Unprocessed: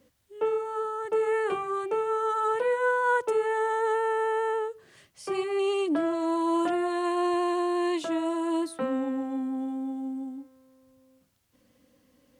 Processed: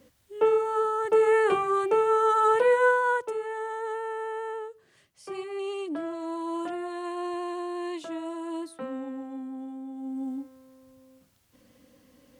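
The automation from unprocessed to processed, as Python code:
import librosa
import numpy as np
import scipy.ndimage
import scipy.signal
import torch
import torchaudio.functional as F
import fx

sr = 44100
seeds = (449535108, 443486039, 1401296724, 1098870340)

y = fx.gain(x, sr, db=fx.line((2.83, 5.0), (3.35, -6.5), (9.9, -6.5), (10.32, 5.0)))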